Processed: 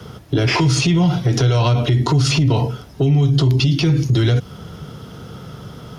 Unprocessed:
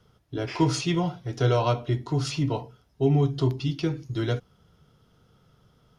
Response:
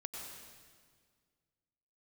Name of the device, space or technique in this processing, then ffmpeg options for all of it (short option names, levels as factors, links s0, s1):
mastering chain: -filter_complex "[0:a]highpass=58,equalizer=f=230:t=o:w=2.2:g=3,acrossover=split=160|1900[s0][s1][s2];[s0]acompressor=threshold=0.0562:ratio=4[s3];[s1]acompressor=threshold=0.0178:ratio=4[s4];[s2]acompressor=threshold=0.0112:ratio=4[s5];[s3][s4][s5]amix=inputs=3:normalize=0,acompressor=threshold=0.0398:ratio=6,asoftclip=type=tanh:threshold=0.0794,alimiter=level_in=42.2:limit=0.891:release=50:level=0:latency=1,volume=0.398"